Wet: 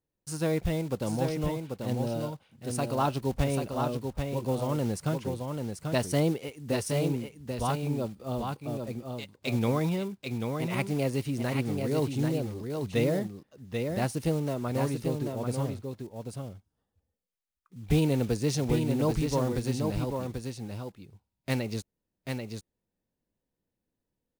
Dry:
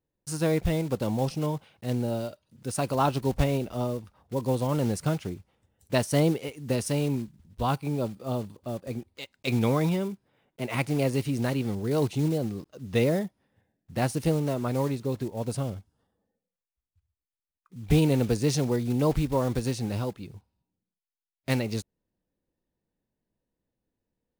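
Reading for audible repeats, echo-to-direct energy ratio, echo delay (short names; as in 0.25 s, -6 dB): 1, -5.0 dB, 0.788 s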